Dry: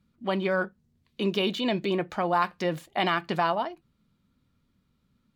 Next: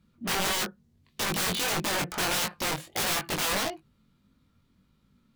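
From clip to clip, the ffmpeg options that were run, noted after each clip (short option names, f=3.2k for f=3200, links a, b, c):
-af "aeval=exprs='(mod(21.1*val(0)+1,2)-1)/21.1':c=same,flanger=delay=18.5:depth=4:speed=1.6,volume=7dB"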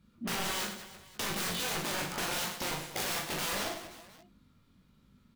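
-filter_complex "[0:a]acompressor=threshold=-36dB:ratio=3,asplit=2[a][b];[b]aecho=0:1:40|100|190|325|527.5:0.631|0.398|0.251|0.158|0.1[c];[a][c]amix=inputs=2:normalize=0"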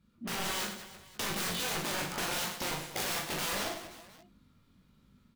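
-af "dynaudnorm=f=230:g=3:m=4dB,volume=-4dB"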